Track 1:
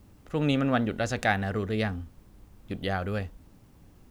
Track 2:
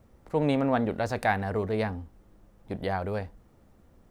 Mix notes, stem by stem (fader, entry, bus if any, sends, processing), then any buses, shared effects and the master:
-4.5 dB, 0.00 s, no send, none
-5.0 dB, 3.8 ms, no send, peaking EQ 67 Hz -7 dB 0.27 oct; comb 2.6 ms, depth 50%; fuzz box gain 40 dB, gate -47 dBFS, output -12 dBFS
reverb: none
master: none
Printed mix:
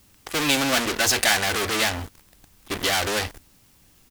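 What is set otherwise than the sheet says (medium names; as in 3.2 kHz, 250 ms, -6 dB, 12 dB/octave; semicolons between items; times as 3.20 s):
stem 1 -4.5 dB -> +3.0 dB; master: extra tilt shelf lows -9.5 dB, about 1.5 kHz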